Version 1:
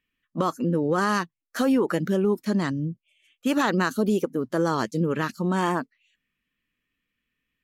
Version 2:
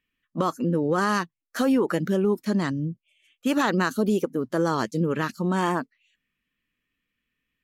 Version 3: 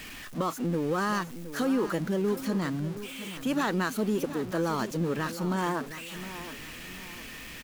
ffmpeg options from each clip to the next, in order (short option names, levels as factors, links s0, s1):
-af anull
-af "aeval=exprs='val(0)+0.5*0.0316*sgn(val(0))':c=same,aecho=1:1:717|1434|2151|2868:0.224|0.0851|0.0323|0.0123,volume=0.473"